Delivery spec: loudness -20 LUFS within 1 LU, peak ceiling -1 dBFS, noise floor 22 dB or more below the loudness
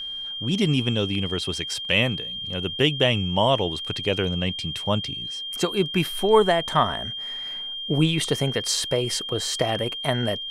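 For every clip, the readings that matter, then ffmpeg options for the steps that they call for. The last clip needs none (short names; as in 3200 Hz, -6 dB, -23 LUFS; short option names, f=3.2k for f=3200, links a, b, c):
steady tone 3200 Hz; tone level -30 dBFS; loudness -23.5 LUFS; peak -5.5 dBFS; loudness target -20.0 LUFS
-> -af "bandreject=f=3.2k:w=30"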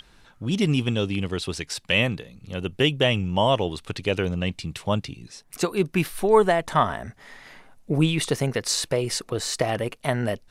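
steady tone none; loudness -24.5 LUFS; peak -6.0 dBFS; loudness target -20.0 LUFS
-> -af "volume=4.5dB"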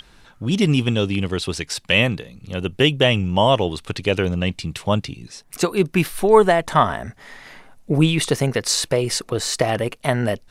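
loudness -20.0 LUFS; peak -1.5 dBFS; noise floor -51 dBFS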